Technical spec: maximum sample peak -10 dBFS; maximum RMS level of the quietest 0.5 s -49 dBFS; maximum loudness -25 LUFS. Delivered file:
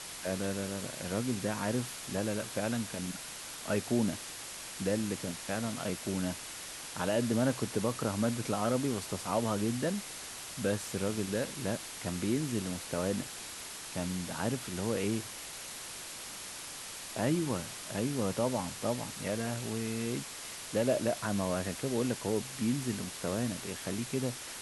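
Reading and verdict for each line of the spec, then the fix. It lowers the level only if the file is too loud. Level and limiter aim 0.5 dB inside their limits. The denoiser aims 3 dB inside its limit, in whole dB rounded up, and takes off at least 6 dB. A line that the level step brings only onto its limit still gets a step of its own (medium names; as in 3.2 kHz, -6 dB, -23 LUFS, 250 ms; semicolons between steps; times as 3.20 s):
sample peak -16.5 dBFS: pass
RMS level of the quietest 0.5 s -44 dBFS: fail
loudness -34.5 LUFS: pass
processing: noise reduction 8 dB, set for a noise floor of -44 dBFS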